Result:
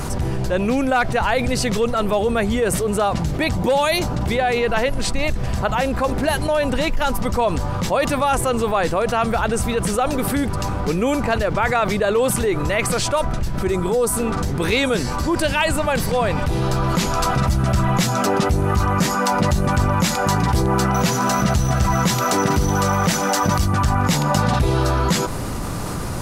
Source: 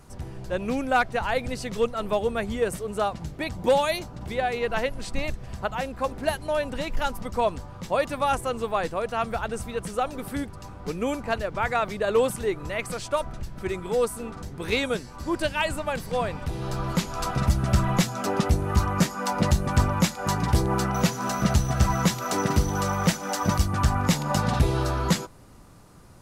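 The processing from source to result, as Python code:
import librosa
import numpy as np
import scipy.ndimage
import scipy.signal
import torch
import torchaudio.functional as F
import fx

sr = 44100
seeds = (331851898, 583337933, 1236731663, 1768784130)

y = fx.peak_eq(x, sr, hz=2400.0, db=-6.0, octaves=1.5, at=(13.63, 14.13))
y = fx.env_flatten(y, sr, amount_pct=70)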